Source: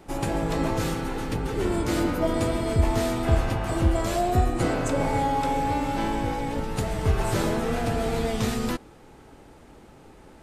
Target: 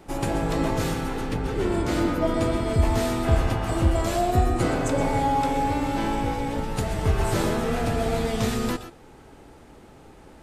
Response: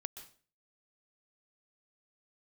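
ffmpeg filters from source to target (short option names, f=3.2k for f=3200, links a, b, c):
-filter_complex "[0:a]asettb=1/sr,asplit=3[a][b][c];[a]atrim=end=1.214[d];[b]atrim=start=1.21:end=2.74,asetpts=PTS-STARTPTS,afade=t=in:d=0.004:c=qsin,afade=t=out:st=1.526:d=0.004:c=qsin,highshelf=f=7.4k:g=-7[e];[c]atrim=start=2.736[f];[d][e]acrossfade=d=0.004:c1=hsin:c2=qsin[g];[g][f]acrossfade=d=0.004:c1=qsin:c2=hsin[h];[1:a]atrim=start_sample=2205,atrim=end_sample=6174[i];[h][i]afir=irnorm=-1:irlink=0,volume=4dB"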